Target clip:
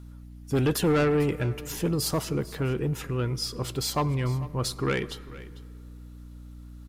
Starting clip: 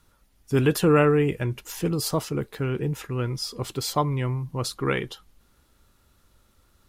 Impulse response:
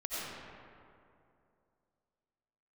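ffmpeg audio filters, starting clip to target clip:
-filter_complex "[0:a]asoftclip=type=tanh:threshold=-18.5dB,aeval=exprs='val(0)+0.00708*(sin(2*PI*60*n/s)+sin(2*PI*2*60*n/s)/2+sin(2*PI*3*60*n/s)/3+sin(2*PI*4*60*n/s)/4+sin(2*PI*5*60*n/s)/5)':c=same,aecho=1:1:447:0.126,asplit=2[a][b];[1:a]atrim=start_sample=2205[c];[b][c]afir=irnorm=-1:irlink=0,volume=-23.5dB[d];[a][d]amix=inputs=2:normalize=0"

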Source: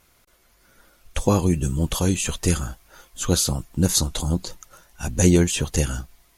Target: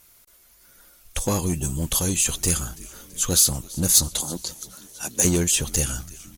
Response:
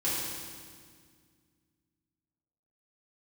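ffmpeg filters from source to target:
-filter_complex "[0:a]asettb=1/sr,asplit=3[a][b][c];[a]atrim=end=4.084[d];[b]atrim=start=4.08:end=5.25,asetpts=PTS-STARTPTS,afade=t=in:d=0.004:c=qsin,afade=t=out:st=1.166:d=0.004:c=qsin,highpass=250[e];[c]atrim=start=5.246[f];[d][e]acrossfade=d=0.004:c1=hsin:c2=qsin[g];[g][f]acrossfade=d=0.004:c1=qsin:c2=hsin,asplit=6[h][i][j][k][l][m];[i]adelay=332,afreqshift=-130,volume=-22dB[n];[j]adelay=664,afreqshift=-260,volume=-26dB[o];[k]adelay=996,afreqshift=-390,volume=-30dB[p];[l]adelay=1328,afreqshift=-520,volume=-34dB[q];[m]adelay=1660,afreqshift=-650,volume=-38.1dB[r];[h][n][o][p][q][r]amix=inputs=6:normalize=0,asplit=2[s][t];[t]aeval=exprs='0.126*(abs(mod(val(0)/0.126+3,4)-2)-1)':c=same,volume=-9dB[u];[s][u]amix=inputs=2:normalize=0,crystalizer=i=2.5:c=0,volume=-6dB"

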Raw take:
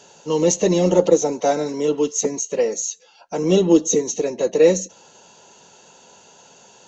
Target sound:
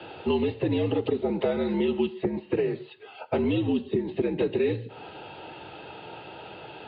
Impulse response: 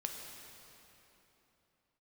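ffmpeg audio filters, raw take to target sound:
-filter_complex "[0:a]alimiter=limit=-13.5dB:level=0:latency=1:release=253,acrossover=split=250|2600[a][b][c];[a]acompressor=threshold=-43dB:ratio=4[d];[b]acompressor=threshold=-35dB:ratio=4[e];[c]acompressor=threshold=-42dB:ratio=4[f];[d][e][f]amix=inputs=3:normalize=0,asplit=2[g][h];[1:a]atrim=start_sample=2205,afade=t=out:st=0.19:d=0.01,atrim=end_sample=8820[i];[h][i]afir=irnorm=-1:irlink=0,volume=-6.5dB[j];[g][j]amix=inputs=2:normalize=0,highpass=f=160:t=q:w=0.5412,highpass=f=160:t=q:w=1.307,lowpass=f=3.4k:t=q:w=0.5176,lowpass=f=3.4k:t=q:w=0.7071,lowpass=f=3.4k:t=q:w=1.932,afreqshift=-72,volume=6.5dB" -ar 11025 -c:a libmp3lame -b:a 32k

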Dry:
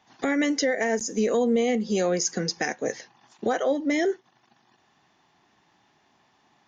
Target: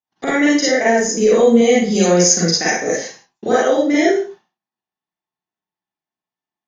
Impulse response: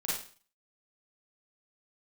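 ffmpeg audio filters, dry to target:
-filter_complex "[0:a]agate=range=-38dB:threshold=-50dB:ratio=16:detection=peak,asettb=1/sr,asplit=3[a][b][c];[a]atrim=end=1.464[d];[b]atrim=start=1.46:end=3.77,asetpts=PTS-STARTPTS,afade=t=in:d=0.004:c=qsin,afade=t=out:st=2.306:d=0.004:c=qsin,highshelf=f=6.7k:g=9[e];[c]atrim=start=3.766[f];[d][e]acrossfade=d=0.004:c1=hsin:c2=qsin[g];[g][f]acrossfade=d=0.004:c1=qsin:c2=hsin[h];[1:a]atrim=start_sample=2205,afade=t=out:st=0.3:d=0.01,atrim=end_sample=13671[i];[h][i]afir=irnorm=-1:irlink=0,volume=5.5dB"

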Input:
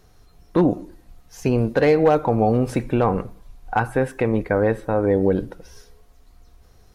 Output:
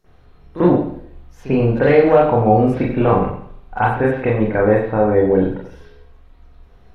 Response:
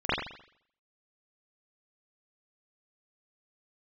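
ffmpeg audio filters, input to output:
-filter_complex "[1:a]atrim=start_sample=2205[a];[0:a][a]afir=irnorm=-1:irlink=0,volume=-9.5dB"

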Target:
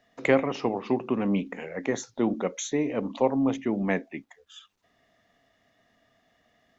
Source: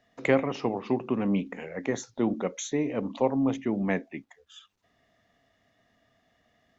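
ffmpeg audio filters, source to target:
-af "equalizer=f=80:w=0.62:g=-4.5,volume=2dB"

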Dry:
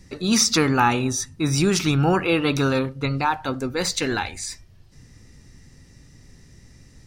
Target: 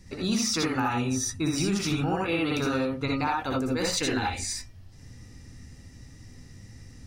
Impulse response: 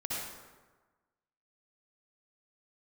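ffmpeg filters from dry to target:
-filter_complex "[1:a]atrim=start_sample=2205,atrim=end_sample=3969[a];[0:a][a]afir=irnorm=-1:irlink=0,acompressor=threshold=-23dB:ratio=10"

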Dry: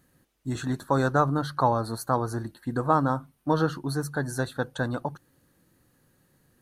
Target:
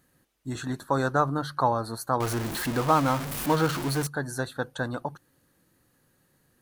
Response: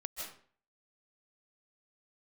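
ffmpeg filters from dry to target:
-filter_complex "[0:a]asettb=1/sr,asplit=3[a][b][c];[a]atrim=end=2.204[d];[b]atrim=start=2.2:end=4.07,asetpts=PTS-STARTPTS,afade=t=in:d=0.004:c=qsin,afade=t=out:st=1.866:d=0.004:c=qsin,aeval=exprs='val(0)+0.5*0.0531*sgn(val(0))':c=same[e];[c]atrim=start=4.066[f];[d][e]acrossfade=d=0.004:c1=hsin:c2=qsin[g];[g][f]acrossfade=d=0.004:c1=qsin:c2=hsin,lowshelf=f=390:g=-4"

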